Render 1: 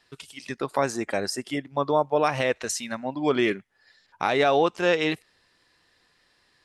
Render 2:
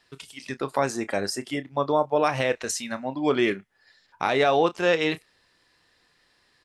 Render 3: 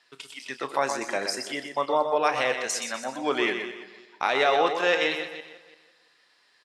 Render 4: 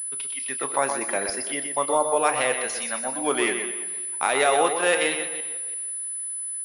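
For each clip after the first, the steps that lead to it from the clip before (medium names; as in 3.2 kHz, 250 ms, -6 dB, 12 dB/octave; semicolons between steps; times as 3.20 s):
doubling 30 ms -13.5 dB
backward echo that repeats 169 ms, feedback 44%, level -13.5 dB; frequency weighting A; feedback delay 123 ms, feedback 26%, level -7.5 dB
class-D stage that switches slowly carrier 10 kHz; trim +1.5 dB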